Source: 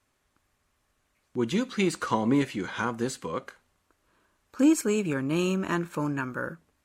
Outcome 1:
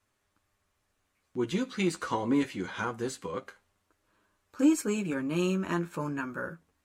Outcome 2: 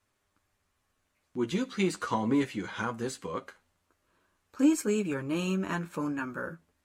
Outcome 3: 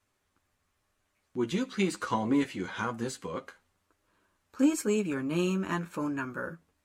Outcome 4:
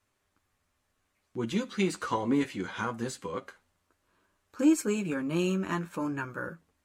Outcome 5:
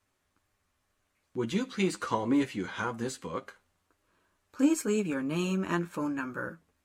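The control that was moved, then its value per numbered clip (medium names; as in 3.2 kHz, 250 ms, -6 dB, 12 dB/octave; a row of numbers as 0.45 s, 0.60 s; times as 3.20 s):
flange, rate: 0.25 Hz, 0.38 Hz, 1 Hz, 0.65 Hz, 2 Hz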